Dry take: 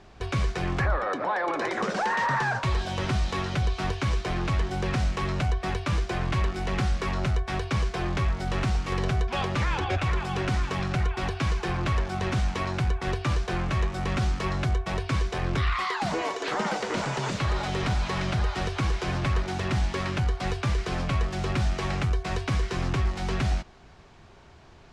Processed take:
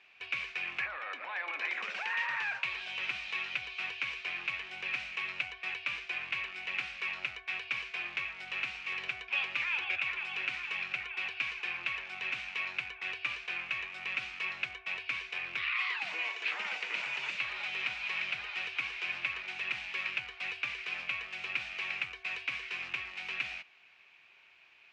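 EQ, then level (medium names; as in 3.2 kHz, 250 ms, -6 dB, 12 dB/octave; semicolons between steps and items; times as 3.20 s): band-pass filter 2.5 kHz, Q 6.8; +8.5 dB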